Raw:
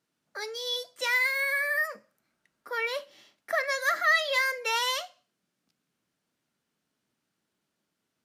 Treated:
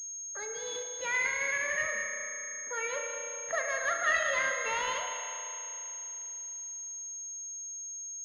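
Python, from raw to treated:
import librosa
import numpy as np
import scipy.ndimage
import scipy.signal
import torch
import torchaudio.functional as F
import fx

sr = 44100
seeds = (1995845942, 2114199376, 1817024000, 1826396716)

y = fx.env_lowpass(x, sr, base_hz=440.0, full_db=-25.0, at=(1.76, 2.7))
y = fx.echo_feedback(y, sr, ms=196, feedback_pct=50, wet_db=-11.5)
y = fx.rev_spring(y, sr, rt60_s=3.3, pass_ms=(34,), chirp_ms=25, drr_db=2.0)
y = fx.pwm(y, sr, carrier_hz=6500.0)
y = F.gain(torch.from_numpy(y), -5.0).numpy()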